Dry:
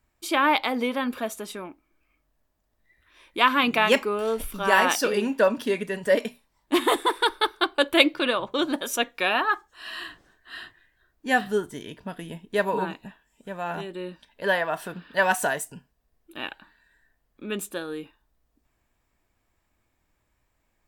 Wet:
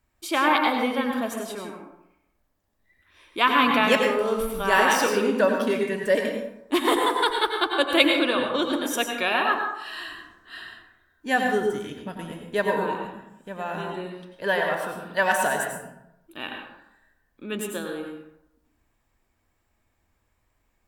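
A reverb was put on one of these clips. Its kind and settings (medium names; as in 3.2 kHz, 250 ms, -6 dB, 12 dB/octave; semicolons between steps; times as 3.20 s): plate-style reverb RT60 0.83 s, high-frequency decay 0.5×, pre-delay 80 ms, DRR 2 dB; trim -1 dB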